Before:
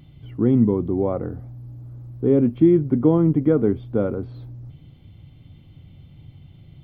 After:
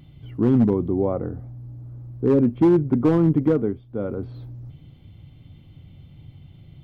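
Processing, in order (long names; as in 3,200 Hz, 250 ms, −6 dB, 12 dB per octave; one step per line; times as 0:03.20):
0:00.93–0:02.91: high-shelf EQ 2,400 Hz −6 dB
0:03.45–0:04.26: duck −13 dB, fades 0.40 s
gain into a clipping stage and back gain 11 dB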